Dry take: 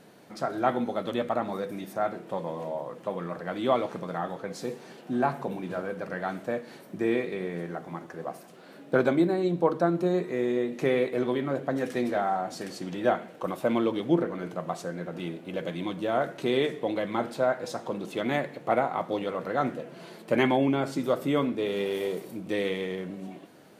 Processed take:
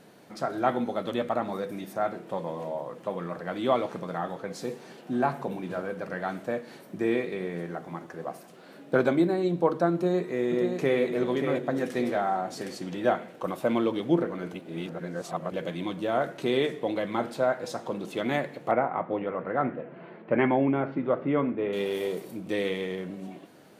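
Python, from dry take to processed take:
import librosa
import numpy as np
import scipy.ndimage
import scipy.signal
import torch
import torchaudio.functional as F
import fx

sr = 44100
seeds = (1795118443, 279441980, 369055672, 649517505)

y = fx.echo_throw(x, sr, start_s=9.93, length_s=1.07, ms=580, feedback_pct=45, wet_db=-6.0)
y = fx.lowpass(y, sr, hz=2300.0, slope=24, at=(18.71, 21.73))
y = fx.edit(y, sr, fx.reverse_span(start_s=14.54, length_s=0.98), tone=tone)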